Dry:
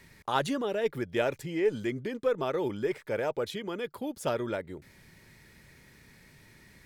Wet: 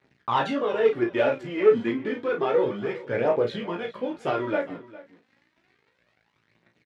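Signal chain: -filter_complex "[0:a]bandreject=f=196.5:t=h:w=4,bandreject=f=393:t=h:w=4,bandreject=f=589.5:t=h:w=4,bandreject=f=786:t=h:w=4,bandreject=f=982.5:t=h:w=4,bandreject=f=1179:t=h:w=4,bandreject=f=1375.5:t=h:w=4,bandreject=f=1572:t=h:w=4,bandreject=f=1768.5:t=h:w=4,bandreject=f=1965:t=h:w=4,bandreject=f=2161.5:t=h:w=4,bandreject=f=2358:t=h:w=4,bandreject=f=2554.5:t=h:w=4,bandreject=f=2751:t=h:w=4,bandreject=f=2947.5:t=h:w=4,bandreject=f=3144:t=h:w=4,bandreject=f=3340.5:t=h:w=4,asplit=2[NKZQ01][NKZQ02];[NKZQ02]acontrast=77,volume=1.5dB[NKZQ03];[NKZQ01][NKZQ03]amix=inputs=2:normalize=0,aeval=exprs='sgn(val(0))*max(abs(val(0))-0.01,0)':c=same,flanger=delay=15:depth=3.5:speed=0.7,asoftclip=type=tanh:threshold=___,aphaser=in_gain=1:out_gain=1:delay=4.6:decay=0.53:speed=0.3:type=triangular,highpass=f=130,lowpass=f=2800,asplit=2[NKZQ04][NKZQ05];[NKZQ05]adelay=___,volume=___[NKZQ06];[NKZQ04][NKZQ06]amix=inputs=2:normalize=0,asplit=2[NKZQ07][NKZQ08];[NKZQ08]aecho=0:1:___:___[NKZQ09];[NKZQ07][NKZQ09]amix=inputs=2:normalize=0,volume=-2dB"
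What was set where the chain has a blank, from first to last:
-14.5dB, 35, -6.5dB, 406, 0.119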